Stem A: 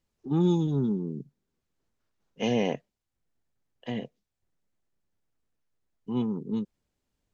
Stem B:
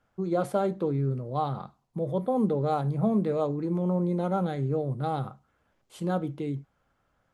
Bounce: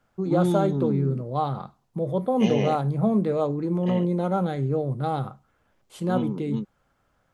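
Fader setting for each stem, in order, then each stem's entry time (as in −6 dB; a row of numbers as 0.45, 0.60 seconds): 0.0, +3.0 decibels; 0.00, 0.00 seconds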